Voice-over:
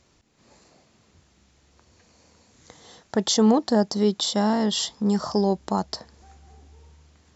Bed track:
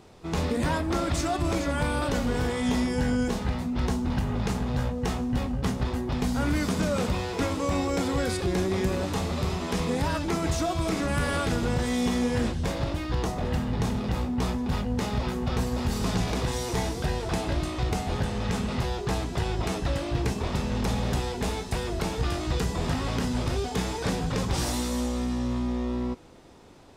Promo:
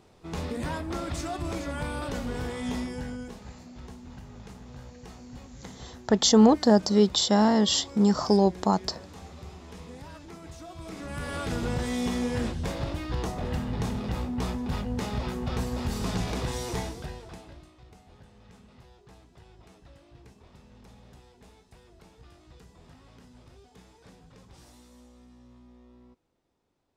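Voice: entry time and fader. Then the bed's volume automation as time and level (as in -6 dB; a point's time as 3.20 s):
2.95 s, +1.0 dB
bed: 2.77 s -6 dB
3.54 s -17.5 dB
10.59 s -17.5 dB
11.60 s -3 dB
16.73 s -3 dB
17.77 s -25.5 dB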